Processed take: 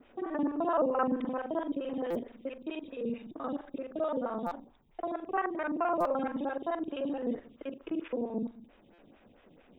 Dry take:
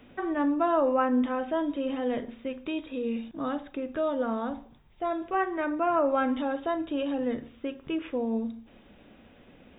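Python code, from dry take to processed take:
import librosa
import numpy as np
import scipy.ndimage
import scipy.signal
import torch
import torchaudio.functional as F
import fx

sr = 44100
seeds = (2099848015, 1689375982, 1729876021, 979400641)

y = fx.local_reverse(x, sr, ms=43.0)
y = fx.buffer_glitch(y, sr, at_s=(2.1, 4.46, 6.0, 8.93), block=256, repeats=8)
y = fx.stagger_phaser(y, sr, hz=4.5)
y = F.gain(torch.from_numpy(y), -2.0).numpy()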